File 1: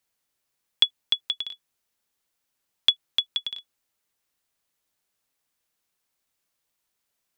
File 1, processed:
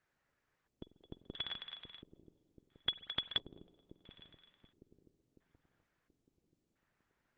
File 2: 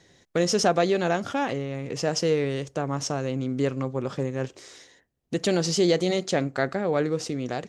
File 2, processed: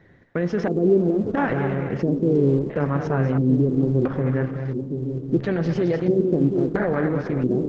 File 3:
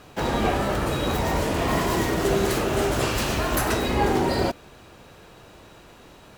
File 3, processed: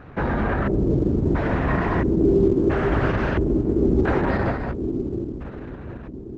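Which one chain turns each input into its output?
low-shelf EQ 360 Hz +11.5 dB
brickwall limiter −13.5 dBFS
high-shelf EQ 4,300 Hz +4 dB
notch filter 7,300 Hz, Q 7.6
on a send: echo with a time of its own for lows and highs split 500 Hz, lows 729 ms, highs 215 ms, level −7 dB
on the sum: spring reverb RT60 2.5 s, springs 46 ms, chirp 75 ms, DRR 12 dB
auto-filter low-pass square 0.74 Hz 360–1,700 Hz
level −1.5 dB
Opus 12 kbit/s 48,000 Hz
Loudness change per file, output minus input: −15.0, +4.0, +2.0 LU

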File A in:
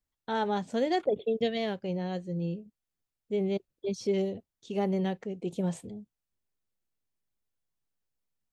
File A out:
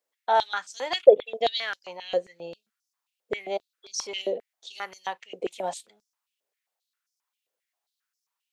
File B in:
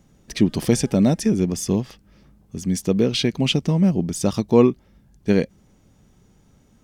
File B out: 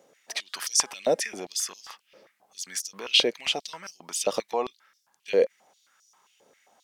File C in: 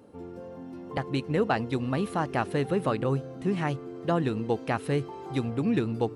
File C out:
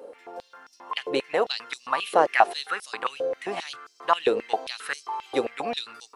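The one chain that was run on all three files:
brickwall limiter −14 dBFS
high-pass on a step sequencer 7.5 Hz 510–5,500 Hz
loudness normalisation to −27 LKFS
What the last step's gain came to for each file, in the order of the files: +4.5, −0.5, +5.5 decibels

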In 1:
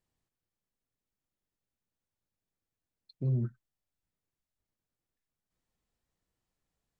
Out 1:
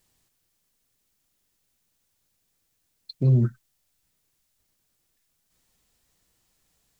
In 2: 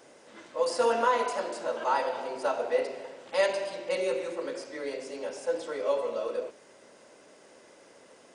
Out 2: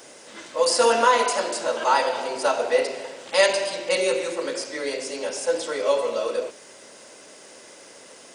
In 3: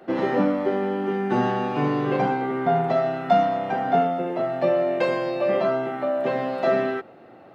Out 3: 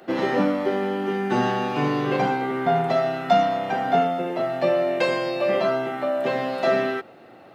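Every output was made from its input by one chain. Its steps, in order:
high-shelf EQ 2,600 Hz +10.5 dB
loudness normalisation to −23 LKFS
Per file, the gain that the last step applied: +10.5, +6.0, −0.5 decibels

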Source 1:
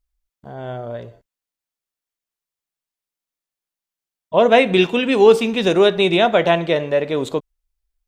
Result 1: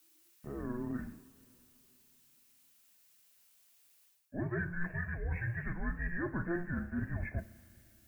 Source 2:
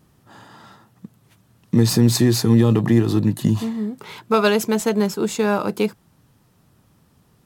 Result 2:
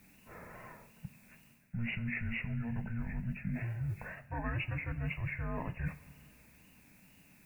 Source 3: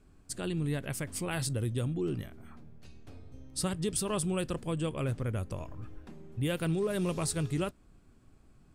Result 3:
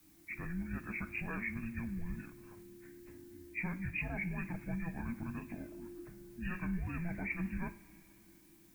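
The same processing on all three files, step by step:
hearing-aid frequency compression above 1,800 Hz 4 to 1
parametric band 95 Hz −8 dB 0.48 octaves
tape wow and flutter 77 cents
background noise blue −61 dBFS
reversed playback
downward compressor 8 to 1, threshold −28 dBFS
reversed playback
coupled-rooms reverb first 0.32 s, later 3.2 s, from −18 dB, DRR 9.5 dB
frequency shifter −350 Hz
level −6 dB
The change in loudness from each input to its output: −23.0, −19.5, −7.5 LU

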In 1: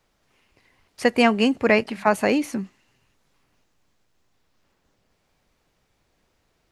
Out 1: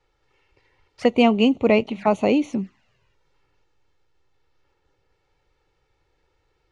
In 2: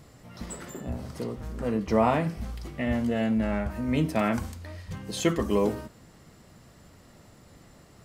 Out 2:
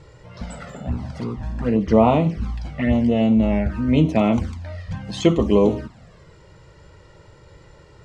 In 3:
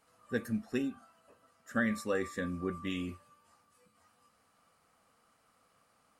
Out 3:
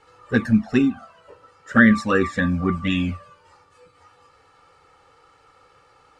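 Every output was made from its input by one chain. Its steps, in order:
flanger swept by the level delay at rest 2.3 ms, full sweep at −22.5 dBFS
high-frequency loss of the air 110 metres
loudness normalisation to −20 LKFS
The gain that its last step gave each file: +3.0, +9.5, +19.0 decibels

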